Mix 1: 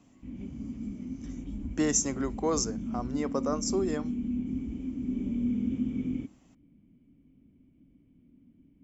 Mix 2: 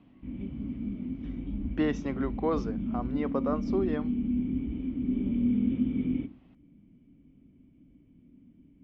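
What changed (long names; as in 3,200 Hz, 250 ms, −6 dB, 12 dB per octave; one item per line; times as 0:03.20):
speech: add Butterworth low-pass 3,700 Hz 36 dB per octave
background: send +11.5 dB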